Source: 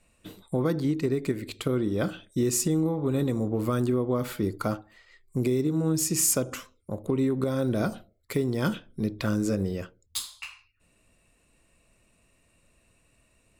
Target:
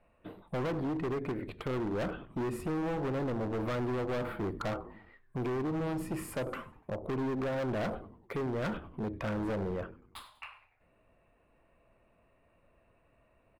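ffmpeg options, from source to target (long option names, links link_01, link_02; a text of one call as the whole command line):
ffmpeg -i in.wav -filter_complex "[0:a]firequalizer=gain_entry='entry(200,0);entry(670,9);entry(6400,-30);entry(9200,-18)':delay=0.05:min_phase=1,asplit=5[link_01][link_02][link_03][link_04][link_05];[link_02]adelay=97,afreqshift=-140,volume=-18dB[link_06];[link_03]adelay=194,afreqshift=-280,volume=-24.2dB[link_07];[link_04]adelay=291,afreqshift=-420,volume=-30.4dB[link_08];[link_05]adelay=388,afreqshift=-560,volume=-36.6dB[link_09];[link_01][link_06][link_07][link_08][link_09]amix=inputs=5:normalize=0,volume=27dB,asoftclip=hard,volume=-27dB,volume=-4dB" out.wav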